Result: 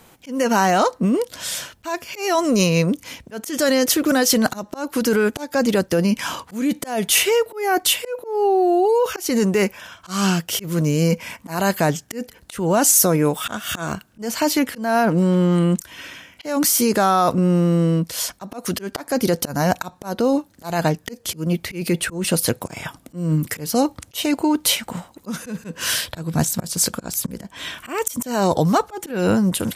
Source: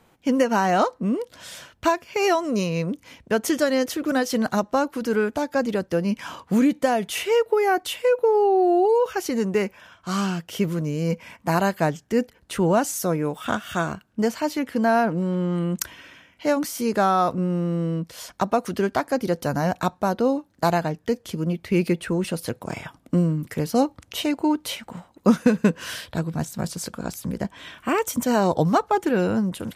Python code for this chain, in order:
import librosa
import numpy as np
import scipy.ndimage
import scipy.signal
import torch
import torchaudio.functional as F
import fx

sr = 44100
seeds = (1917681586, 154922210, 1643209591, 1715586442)

p1 = fx.over_compress(x, sr, threshold_db=-23.0, ratio=-0.5)
p2 = x + (p1 * 10.0 ** (-0.5 / 20.0))
p3 = fx.high_shelf(p2, sr, hz=4400.0, db=10.0)
y = fx.auto_swell(p3, sr, attack_ms=215.0)